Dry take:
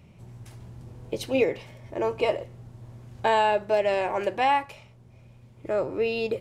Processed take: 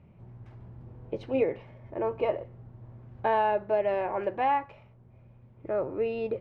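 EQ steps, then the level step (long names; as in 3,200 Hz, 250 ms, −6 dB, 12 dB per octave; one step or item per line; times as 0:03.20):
low-pass filter 1,700 Hz 12 dB per octave
−3.0 dB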